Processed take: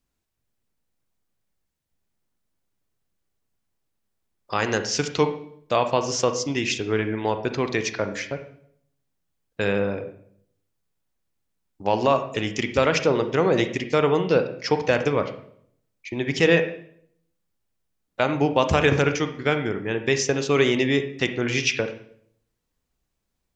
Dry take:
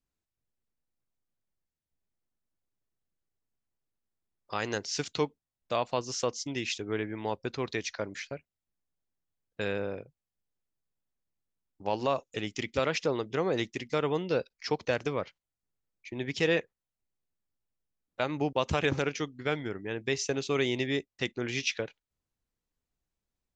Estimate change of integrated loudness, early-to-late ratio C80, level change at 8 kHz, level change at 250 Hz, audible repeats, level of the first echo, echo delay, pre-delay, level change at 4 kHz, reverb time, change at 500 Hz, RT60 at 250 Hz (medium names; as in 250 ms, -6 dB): +9.0 dB, 13.5 dB, +8.0 dB, +9.5 dB, no echo, no echo, no echo, 31 ms, +7.0 dB, 0.65 s, +9.5 dB, 0.75 s